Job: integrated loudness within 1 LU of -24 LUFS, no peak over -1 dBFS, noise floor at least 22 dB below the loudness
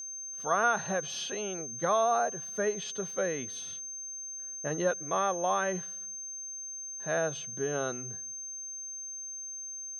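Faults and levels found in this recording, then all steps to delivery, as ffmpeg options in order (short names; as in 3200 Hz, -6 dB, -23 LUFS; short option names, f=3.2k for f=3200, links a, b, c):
steady tone 6300 Hz; tone level -38 dBFS; loudness -32.5 LUFS; peak -14.0 dBFS; loudness target -24.0 LUFS
-> -af "bandreject=f=6.3k:w=30"
-af "volume=8.5dB"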